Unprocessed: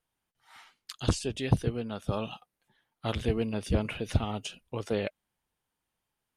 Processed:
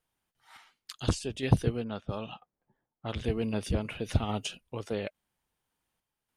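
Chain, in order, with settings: random-step tremolo; 1.84–3.24 s: level-controlled noise filter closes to 680 Hz, open at -31 dBFS; trim +2.5 dB

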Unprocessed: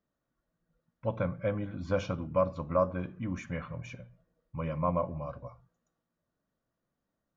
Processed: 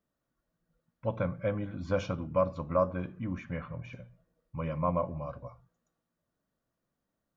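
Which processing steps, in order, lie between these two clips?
3.22–3.93 s: distance through air 190 m

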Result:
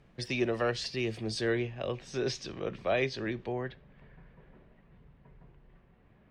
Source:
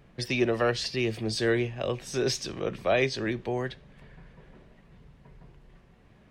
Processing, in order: low-pass 9.9 kHz 12 dB/octave, from 1.41 s 5.2 kHz, from 3.52 s 2.7 kHz; trim -4.5 dB

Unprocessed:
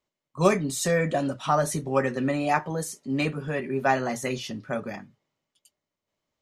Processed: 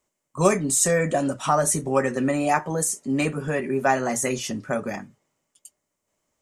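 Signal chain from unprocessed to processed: graphic EQ 125/4000/8000 Hz -3/-8/+11 dB; in parallel at +0.5 dB: compression, threshold -30 dBFS, peak gain reduction 15 dB

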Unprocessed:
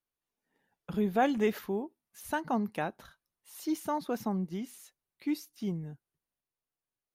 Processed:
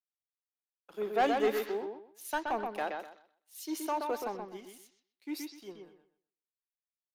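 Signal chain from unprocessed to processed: high-pass 340 Hz 24 dB/octave; waveshaping leveller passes 2; on a send: bucket-brigade echo 126 ms, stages 4096, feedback 34%, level -3.5 dB; on the sum: three bands expanded up and down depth 70%; trim -7 dB

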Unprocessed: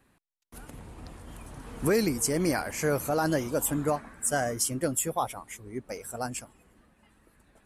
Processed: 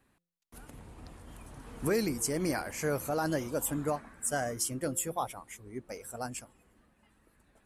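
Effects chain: de-hum 172.3 Hz, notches 3; trim -4.5 dB

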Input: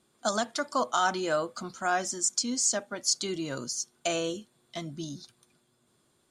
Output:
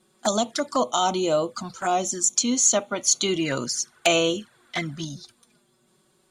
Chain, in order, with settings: 2.36–5.05 s: peaking EQ 1.6 kHz +14 dB 1.4 oct; touch-sensitive flanger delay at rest 5.5 ms, full sweep at -27 dBFS; trim +8 dB

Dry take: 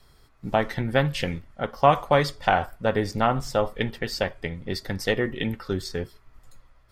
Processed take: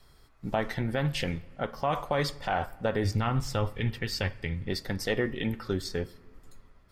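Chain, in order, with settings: 3.04–4.69 s: fifteen-band graphic EQ 100 Hz +11 dB, 630 Hz -8 dB, 2.5 kHz +4 dB; peak limiter -15 dBFS, peak gain reduction 11 dB; on a send: reverberation RT60 1.9 s, pre-delay 3 ms, DRR 20.5 dB; on the sum: trim -2 dB

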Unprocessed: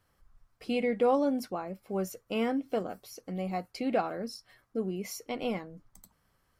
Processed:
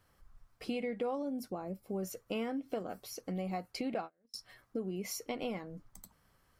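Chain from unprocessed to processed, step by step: 1.22–2.03 s: peaking EQ 2 kHz -10.5 dB 2.8 oct; 3.94–4.34 s: gate -29 dBFS, range -40 dB; compression 4:1, threshold -37 dBFS, peak gain reduction 13.5 dB; trim +2 dB

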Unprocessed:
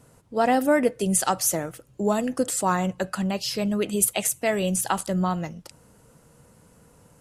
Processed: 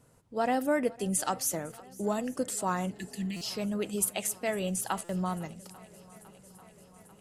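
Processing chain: shuffle delay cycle 842 ms, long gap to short 1.5:1, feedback 64%, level -22.5 dB; spectral replace 2.91–3.37 s, 370–1700 Hz after; buffer glitch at 3.36/5.04 s, samples 256, times 8; trim -7.5 dB

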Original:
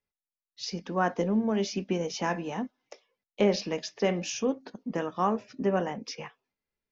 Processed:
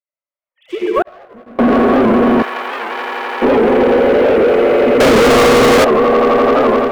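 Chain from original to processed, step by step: formants replaced by sine waves; echo with a slow build-up 85 ms, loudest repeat 8, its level -4.5 dB; algorithmic reverb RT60 2.1 s, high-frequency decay 0.3×, pre-delay 45 ms, DRR -8 dB; peak limiter -11.5 dBFS, peak gain reduction 9.5 dB; low-pass 1.4 kHz 6 dB/octave; waveshaping leveller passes 2; level rider gain up to 12 dB; 5.00–5.85 s: waveshaping leveller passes 5; compression 4:1, threshold -9 dBFS, peak gain reduction 5 dB; 1.02–1.59 s: gate -7 dBFS, range -51 dB; 2.42–3.42 s: high-pass 1.1 kHz 12 dB/octave; warped record 78 rpm, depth 160 cents

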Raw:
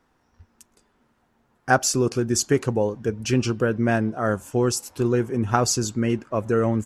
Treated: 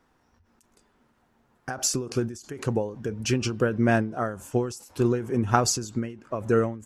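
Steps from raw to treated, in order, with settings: endings held to a fixed fall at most 110 dB/s

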